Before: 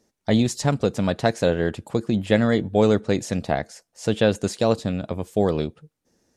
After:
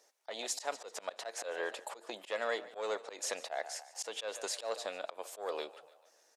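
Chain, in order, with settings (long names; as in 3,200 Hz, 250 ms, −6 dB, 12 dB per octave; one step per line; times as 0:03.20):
soft clipping −9.5 dBFS, distortion −18 dB
downward compressor 3 to 1, threshold −29 dBFS, peak gain reduction 10.5 dB
high-pass filter 540 Hz 24 dB per octave
echo with shifted repeats 146 ms, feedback 52%, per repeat +31 Hz, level −19 dB
volume swells 142 ms
level +2.5 dB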